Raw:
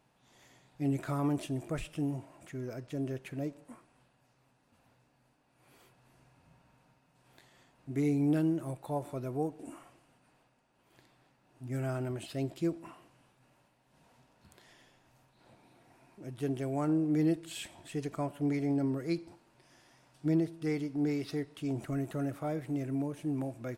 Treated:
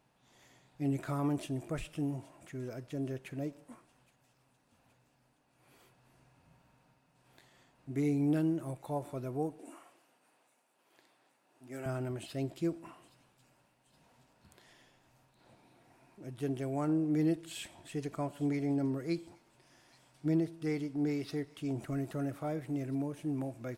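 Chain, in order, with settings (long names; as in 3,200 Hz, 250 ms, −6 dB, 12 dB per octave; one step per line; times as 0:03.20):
0:09.59–0:11.86: high-pass filter 320 Hz 12 dB per octave
on a send: delay with a high-pass on its return 820 ms, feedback 57%, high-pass 3,600 Hz, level −17 dB
on the sum: level −1.5 dB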